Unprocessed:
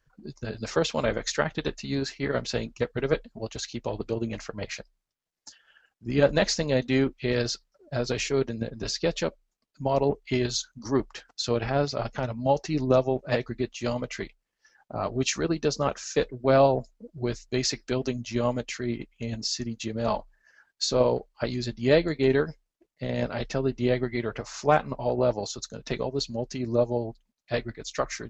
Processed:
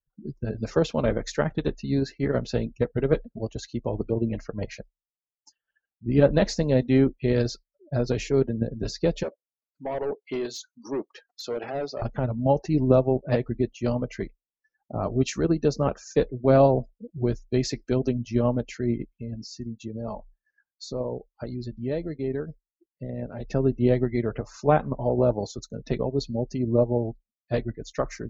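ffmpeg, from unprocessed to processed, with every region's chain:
ffmpeg -i in.wav -filter_complex "[0:a]asettb=1/sr,asplit=3[link_01][link_02][link_03];[link_01]atrim=end=9.234[link_04];[link_02]atrim=start=9.23:end=12.02,asetpts=PTS-STARTPTS,afade=type=in:duration=0.004:curve=qsin,afade=type=out:start_time=2.786:duration=0.004:curve=qsin,highpass=390,asoftclip=type=hard:threshold=-27.5dB[link_05];[link_03]atrim=start=12.016[link_06];[link_04][link_05]acrossfade=duration=0.004:curve1=hsin:curve2=qsin[link_07];[link_07][link_06]acrossfade=duration=0.004:curve1=qsin:curve2=hsin,asettb=1/sr,asplit=3[link_08][link_09][link_10];[link_08]atrim=end=19.124[link_11];[link_09]atrim=start=19.12:end=23.48,asetpts=PTS-STARTPTS,afade=type=in:duration=0.004:curve=qsin,afade=type=out:start_time=4.356:duration=0.004:curve=qsin,highshelf=frequency=7300:gain=5.5,acompressor=threshold=-46dB:ratio=1.5:attack=3.2:release=140:knee=1:detection=peak[link_12];[link_10]atrim=start=23.476[link_13];[link_11][link_12]acrossfade=duration=0.004:curve1=hsin:curve2=qsin[link_14];[link_14][link_13]acrossfade=duration=0.004:curve1=qsin:curve2=hsin,afftdn=noise_reduction=25:noise_floor=-43,tiltshelf=frequency=740:gain=6" out.wav

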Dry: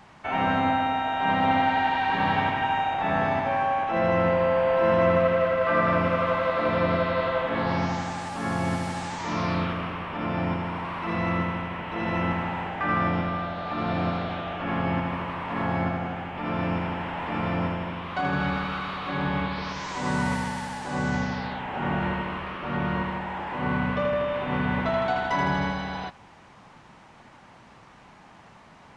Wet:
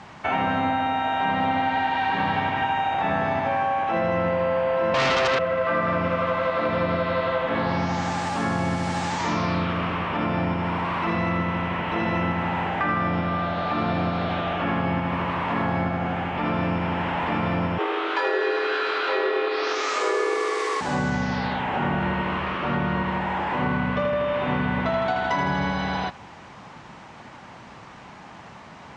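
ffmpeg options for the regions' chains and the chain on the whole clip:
ffmpeg -i in.wav -filter_complex "[0:a]asettb=1/sr,asplit=3[link_01][link_02][link_03];[link_01]atrim=end=4.944[link_04];[link_02]atrim=start=4.94:end=5.39,asetpts=PTS-STARTPTS,afade=type=in:duration=0.004:curve=qsin,afade=type=out:start_time=0.446:duration=0.004:curve=qsin,highpass=1100,equalizer=frequency=2100:width=0.46:gain=-6.5,aeval=exprs='0.178*sin(PI/2*7.08*val(0)/0.178)':channel_layout=same[link_05];[link_03]atrim=start=5.386[link_06];[link_04][link_05]acrossfade=duration=0.004:curve1=hsin:curve2=qsin[link_07];[link_07][link_06]acrossfade=duration=0.004:curve1=qsin:curve2=hsin,asettb=1/sr,asplit=3[link_08][link_09][link_10];[link_08]atrim=end=17.784[link_11];[link_09]atrim=start=17.78:end=20.81,asetpts=PTS-STARTPTS,afade=type=in:duration=0.004:curve=qsin,afade=type=out:start_time=3.026:duration=0.004:curve=qsin,afreqshift=240,asplit=2[link_12][link_13];[link_13]adelay=21,volume=-2dB[link_14];[link_12][link_14]amix=inputs=2:normalize=0,atrim=end_sample=133623[link_15];[link_10]atrim=start=20.806[link_16];[link_11][link_15]acrossfade=duration=0.004:curve1=hsin:curve2=qsin[link_17];[link_17][link_16]acrossfade=duration=0.004:curve1=qsin:curve2=hsin,highpass=52,acompressor=threshold=-29dB:ratio=4,lowpass=frequency=8200:width=0.5412,lowpass=frequency=8200:width=1.3066,volume=7.5dB" out.wav

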